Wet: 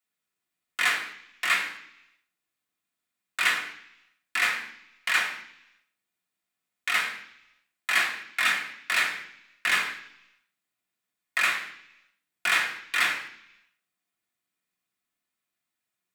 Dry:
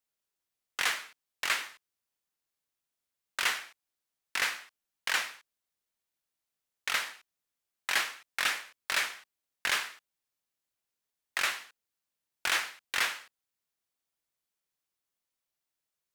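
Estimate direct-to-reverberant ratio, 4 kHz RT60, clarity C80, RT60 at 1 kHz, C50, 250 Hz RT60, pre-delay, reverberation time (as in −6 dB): −3.0 dB, 1.0 s, 12.0 dB, 0.75 s, 9.5 dB, 0.90 s, 3 ms, 0.70 s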